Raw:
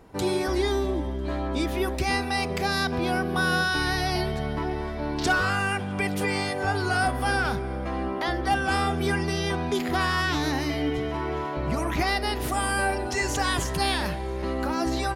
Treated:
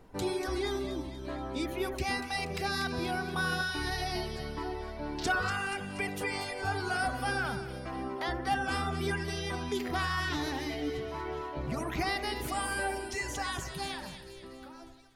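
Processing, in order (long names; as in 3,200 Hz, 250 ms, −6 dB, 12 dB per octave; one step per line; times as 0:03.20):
fade-out on the ending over 2.37 s
background noise brown −53 dBFS
reverb reduction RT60 1.1 s
on a send: echo with a time of its own for lows and highs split 1,900 Hz, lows 84 ms, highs 239 ms, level −8.5 dB
on the sum: level −6 dB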